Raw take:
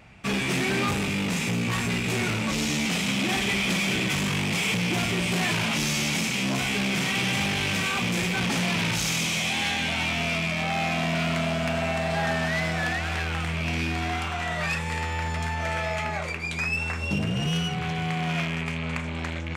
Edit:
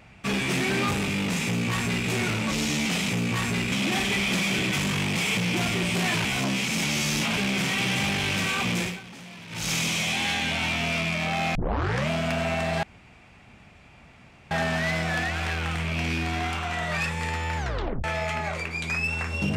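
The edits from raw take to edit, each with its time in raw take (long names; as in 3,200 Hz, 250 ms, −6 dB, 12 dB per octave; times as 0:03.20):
0:01.45–0:02.08: duplicate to 0:03.09
0:05.62–0:06.74: reverse
0:08.15–0:09.09: duck −17.5 dB, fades 0.23 s
0:10.92: tape start 0.55 s
0:12.20: splice in room tone 1.68 s
0:15.26: tape stop 0.47 s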